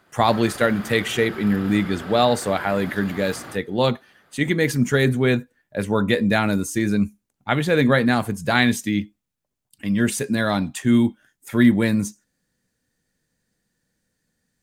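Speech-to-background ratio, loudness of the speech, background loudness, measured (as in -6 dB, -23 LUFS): 16.0 dB, -21.0 LUFS, -37.0 LUFS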